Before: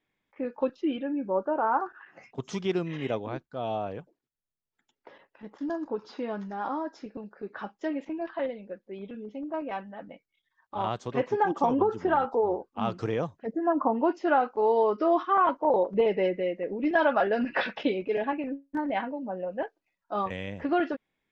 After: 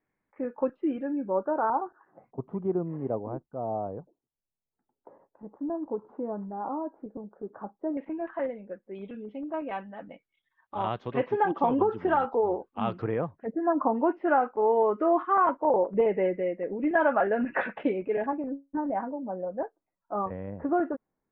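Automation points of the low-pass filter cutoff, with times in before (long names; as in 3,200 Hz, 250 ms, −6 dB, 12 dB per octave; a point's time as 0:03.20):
low-pass filter 24 dB per octave
1,900 Hz
from 0:01.70 1,000 Hz
from 0:07.97 2,100 Hz
from 0:08.95 3,300 Hz
from 0:13.02 2,100 Hz
from 0:18.26 1,300 Hz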